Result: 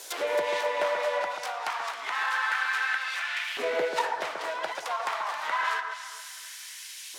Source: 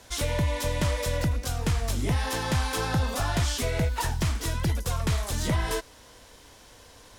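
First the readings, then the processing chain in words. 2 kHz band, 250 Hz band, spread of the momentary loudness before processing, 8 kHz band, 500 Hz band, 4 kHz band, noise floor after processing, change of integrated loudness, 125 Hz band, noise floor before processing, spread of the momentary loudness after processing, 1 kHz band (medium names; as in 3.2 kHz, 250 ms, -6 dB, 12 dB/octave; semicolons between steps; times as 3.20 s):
+6.5 dB, -17.5 dB, 2 LU, -7.5 dB, +2.5 dB, -1.5 dB, -43 dBFS, -1.5 dB, under -35 dB, -52 dBFS, 13 LU, +4.5 dB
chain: tracing distortion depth 0.36 ms; RIAA curve recording; low-pass that closes with the level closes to 2 kHz, closed at -22.5 dBFS; bass shelf 490 Hz -4.5 dB; LFO high-pass saw up 0.28 Hz 380–2500 Hz; echo whose repeats swap between lows and highs 135 ms, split 1.8 kHz, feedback 55%, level -5 dB; trim +2.5 dB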